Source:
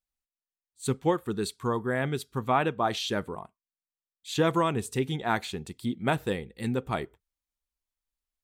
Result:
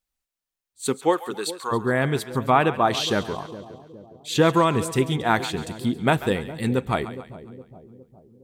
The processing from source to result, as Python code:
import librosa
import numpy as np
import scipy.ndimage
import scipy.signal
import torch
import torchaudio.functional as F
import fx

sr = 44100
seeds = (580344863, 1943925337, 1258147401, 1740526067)

y = fx.highpass(x, sr, hz=fx.line((0.86, 240.0), (1.71, 810.0)), slope=12, at=(0.86, 1.71), fade=0.02)
y = fx.echo_split(y, sr, split_hz=650.0, low_ms=412, high_ms=138, feedback_pct=52, wet_db=-14)
y = y * 10.0 ** (6.5 / 20.0)